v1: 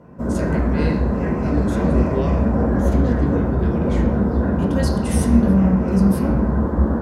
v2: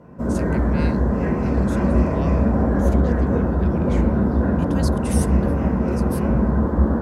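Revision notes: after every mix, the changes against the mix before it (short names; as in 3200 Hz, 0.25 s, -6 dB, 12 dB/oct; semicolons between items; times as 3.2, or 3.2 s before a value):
speech: send off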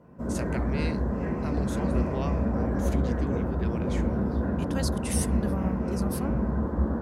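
background -8.5 dB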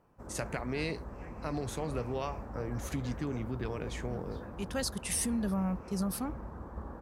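background -3.5 dB; reverb: off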